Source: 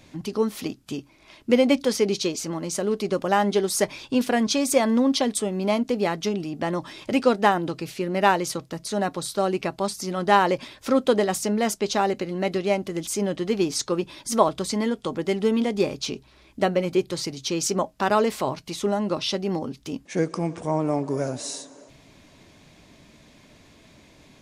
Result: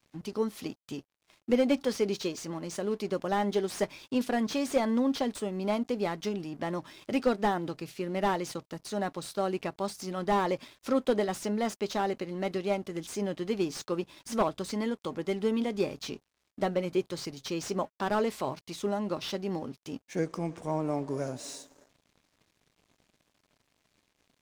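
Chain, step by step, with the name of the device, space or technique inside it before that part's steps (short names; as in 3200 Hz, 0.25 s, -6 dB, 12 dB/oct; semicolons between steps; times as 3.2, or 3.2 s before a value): early transistor amplifier (crossover distortion -49 dBFS; slew limiter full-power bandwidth 150 Hz); gain -6.5 dB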